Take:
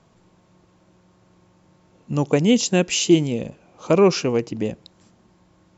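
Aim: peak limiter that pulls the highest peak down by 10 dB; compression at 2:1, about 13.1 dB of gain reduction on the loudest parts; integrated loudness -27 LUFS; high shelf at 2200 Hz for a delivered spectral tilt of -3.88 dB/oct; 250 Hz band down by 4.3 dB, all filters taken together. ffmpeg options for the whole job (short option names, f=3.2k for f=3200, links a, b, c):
-af "equalizer=f=250:t=o:g=-6.5,highshelf=f=2.2k:g=7.5,acompressor=threshold=-38dB:ratio=2,volume=10.5dB,alimiter=limit=-17dB:level=0:latency=1"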